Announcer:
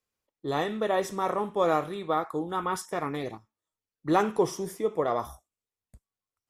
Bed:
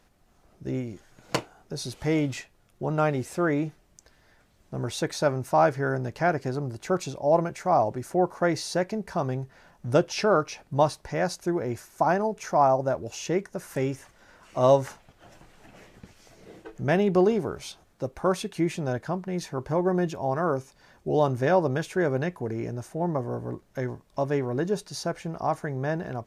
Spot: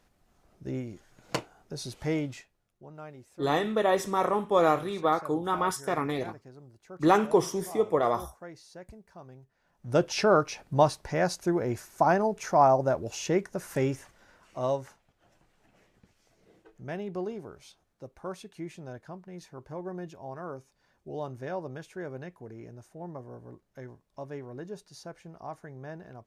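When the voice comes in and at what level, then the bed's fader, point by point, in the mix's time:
2.95 s, +2.0 dB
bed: 0:02.11 −4 dB
0:02.91 −20.5 dB
0:09.58 −20.5 dB
0:10.04 0 dB
0:13.93 0 dB
0:14.98 −13.5 dB

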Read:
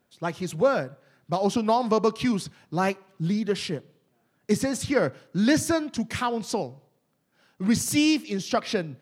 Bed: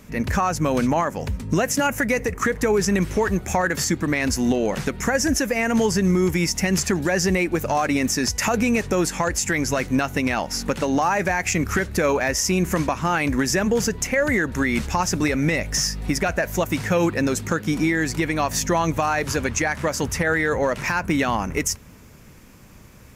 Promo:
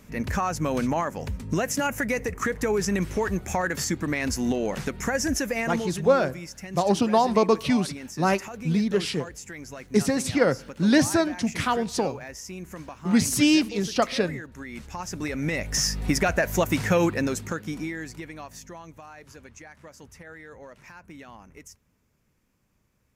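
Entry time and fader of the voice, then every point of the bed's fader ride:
5.45 s, +2.0 dB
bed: 0:05.59 −5 dB
0:06.07 −17.5 dB
0:14.65 −17.5 dB
0:15.93 −0.5 dB
0:16.91 −0.5 dB
0:18.90 −23.5 dB

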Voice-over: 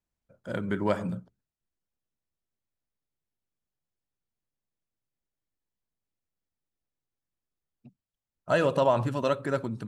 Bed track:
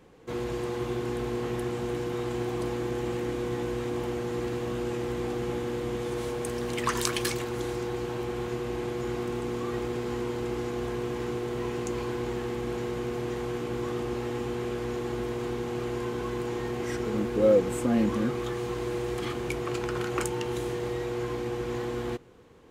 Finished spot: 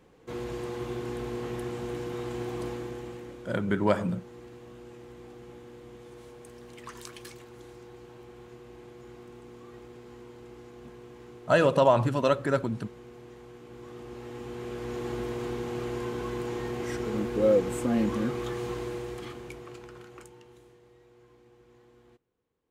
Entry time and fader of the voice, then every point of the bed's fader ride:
3.00 s, +2.5 dB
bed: 0:02.67 −3.5 dB
0:03.55 −16 dB
0:13.59 −16 dB
0:15.07 −1.5 dB
0:18.71 −1.5 dB
0:20.83 −26.5 dB

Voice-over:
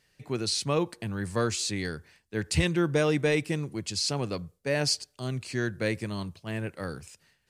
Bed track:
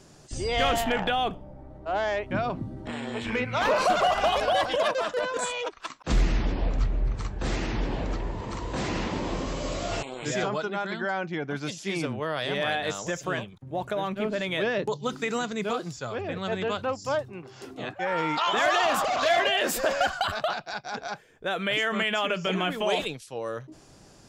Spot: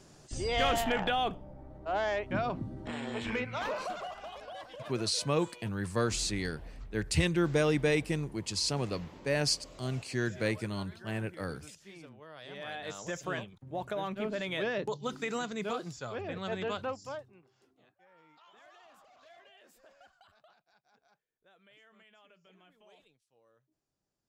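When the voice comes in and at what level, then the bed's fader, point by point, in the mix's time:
4.60 s, −2.5 dB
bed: 0:03.28 −4 dB
0:04.22 −21 dB
0:12.25 −21 dB
0:13.16 −6 dB
0:16.85 −6 dB
0:17.96 −35 dB

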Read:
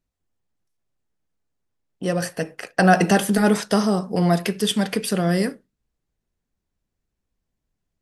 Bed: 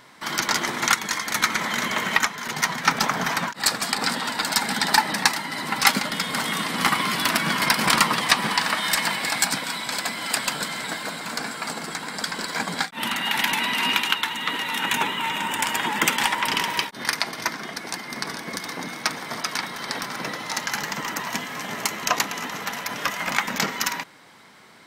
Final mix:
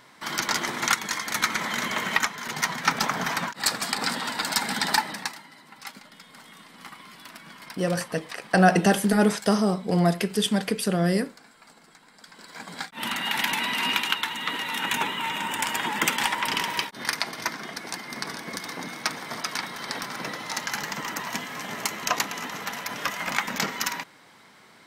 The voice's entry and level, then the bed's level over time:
5.75 s, −2.5 dB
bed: 0:04.91 −3 dB
0:05.64 −22.5 dB
0:12.18 −22.5 dB
0:13.08 −3 dB

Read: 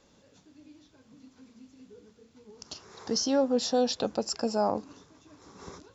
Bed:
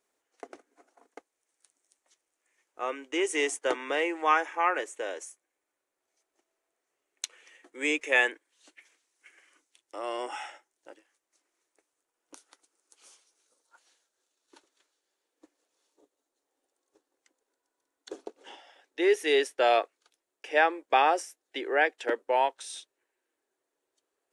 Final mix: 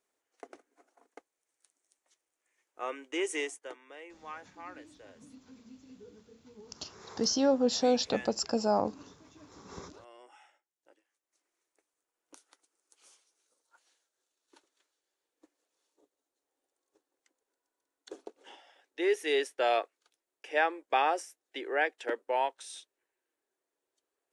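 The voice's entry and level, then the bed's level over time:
4.10 s, −0.5 dB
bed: 0:03.34 −4 dB
0:03.81 −20.5 dB
0:10.53 −20.5 dB
0:11.47 −4.5 dB

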